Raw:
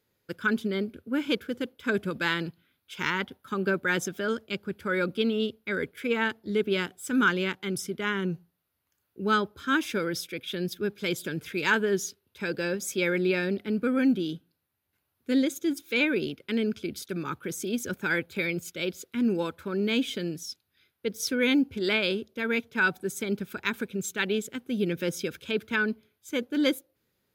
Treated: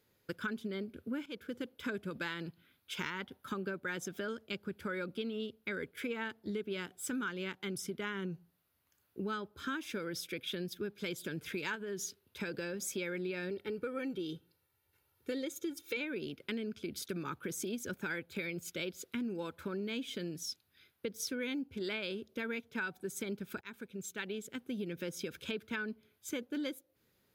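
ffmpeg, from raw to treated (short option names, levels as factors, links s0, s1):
-filter_complex "[0:a]asettb=1/sr,asplit=3[s0][s1][s2];[s0]atrim=end=11.754[s3];[s1]atrim=start=11.75:end=12.84,asetpts=PTS-STARTPTS,afade=t=in:d=0.004:c=qsin,afade=t=out:st=1.086:d=0.004:c=qsin,acompressor=threshold=0.0447:ratio=6:attack=3.2:release=140:knee=1:detection=peak[s4];[s2]atrim=start=12.836[s5];[s3][s4]acrossfade=d=0.004:c1=hsin:c2=qsin[s6];[s6][s5]acrossfade=d=0.004:c1=qsin:c2=hsin,asettb=1/sr,asplit=3[s7][s8][s9];[s7]atrim=end=13.504[s10];[s8]atrim=start=13.5:end=15.97,asetpts=PTS-STARTPTS,afade=t=in:d=0.004:c=qsin,afade=t=out:st=2.466:d=0.004:c=qsin,aecho=1:1:2.2:0.65,atrim=end_sample=108927[s11];[s9]atrim=start=15.966[s12];[s10][s11]acrossfade=d=0.004:c1=hsin:c2=qsin[s13];[s13][s12]acrossfade=d=0.004:c1=qsin:c2=hsin,asplit=3[s14][s15][s16];[s14]atrim=end=1.26,asetpts=PTS-STARTPTS,afade=t=out:st=1.256:d=0.004:c=hsin:silence=0.133352[s17];[s15]atrim=start=1.26:end=23.61,asetpts=PTS-STARTPTS,afade=t=in:d=0.62:silence=0.133352,afade=t=out:st=22.346:d=0.004:c=hsin:silence=0.0794328[s18];[s16]atrim=start=23.61,asetpts=PTS-STARTPTS,afade=t=in:d=2.19:silence=0.0794328[s19];[s17][s18][s19]concat=n=3:v=0:a=1,acompressor=threshold=0.0126:ratio=6,volume=1.19"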